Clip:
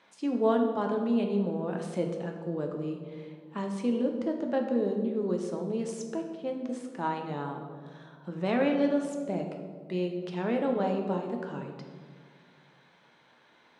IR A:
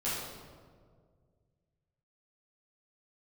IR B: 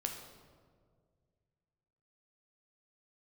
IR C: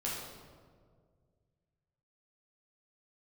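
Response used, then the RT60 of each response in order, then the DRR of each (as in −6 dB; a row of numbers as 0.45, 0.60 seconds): B; 1.9, 1.9, 1.9 seconds; −11.5, 2.5, −6.5 decibels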